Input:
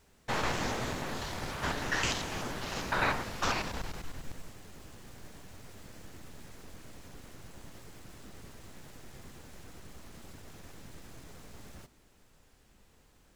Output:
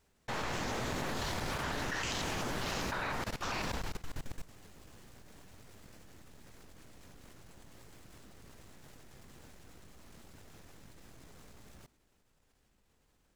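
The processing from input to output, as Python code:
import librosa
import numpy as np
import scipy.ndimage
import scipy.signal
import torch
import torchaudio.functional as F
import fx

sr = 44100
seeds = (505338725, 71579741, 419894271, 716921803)

y = fx.leveller(x, sr, passes=1)
y = fx.level_steps(y, sr, step_db=18)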